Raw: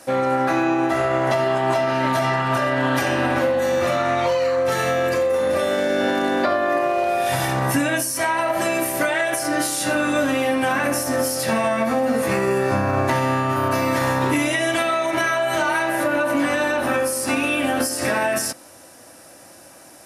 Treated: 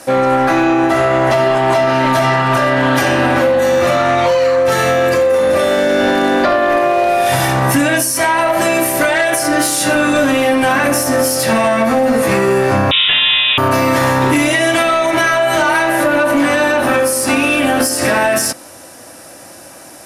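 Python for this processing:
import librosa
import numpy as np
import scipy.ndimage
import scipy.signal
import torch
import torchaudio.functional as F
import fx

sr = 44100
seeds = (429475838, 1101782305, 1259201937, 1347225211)

p1 = fx.fold_sine(x, sr, drive_db=7, ceiling_db=-7.0)
p2 = x + (p1 * librosa.db_to_amplitude(-6.0))
y = fx.freq_invert(p2, sr, carrier_hz=3700, at=(12.91, 13.58))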